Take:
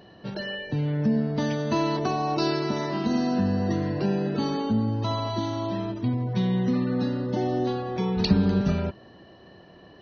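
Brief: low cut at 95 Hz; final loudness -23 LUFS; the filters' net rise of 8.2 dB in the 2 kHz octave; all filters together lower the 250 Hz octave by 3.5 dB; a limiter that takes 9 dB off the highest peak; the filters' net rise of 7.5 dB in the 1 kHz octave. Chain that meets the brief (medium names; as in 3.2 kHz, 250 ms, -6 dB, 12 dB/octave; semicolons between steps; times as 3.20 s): high-pass 95 Hz; peaking EQ 250 Hz -5 dB; peaking EQ 1 kHz +8 dB; peaking EQ 2 kHz +7.5 dB; trim +4 dB; peak limiter -13.5 dBFS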